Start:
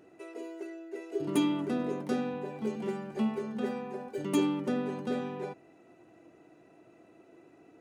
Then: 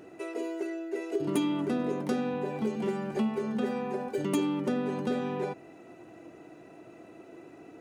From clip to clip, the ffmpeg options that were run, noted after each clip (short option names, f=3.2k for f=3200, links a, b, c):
-af "acompressor=threshold=-37dB:ratio=2.5,volume=8dB"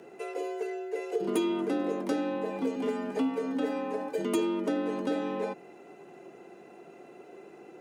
-af "afreqshift=46"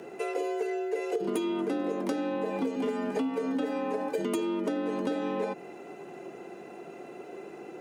-af "acompressor=threshold=-33dB:ratio=6,volume=6dB"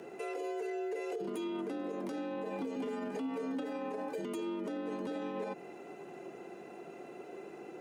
-af "alimiter=level_in=2.5dB:limit=-24dB:level=0:latency=1:release=44,volume=-2.5dB,volume=-4dB"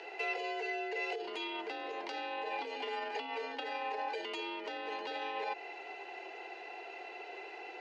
-af "highpass=f=500:w=0.5412,highpass=f=500:w=1.3066,equalizer=f=570:t=q:w=4:g=-9,equalizer=f=840:t=q:w=4:g=5,equalizer=f=1.2k:t=q:w=4:g=-8,equalizer=f=2k:t=q:w=4:g=5,equalizer=f=2.8k:t=q:w=4:g=8,equalizer=f=4.4k:t=q:w=4:g=8,lowpass=f=5.3k:w=0.5412,lowpass=f=5.3k:w=1.3066,volume=5.5dB"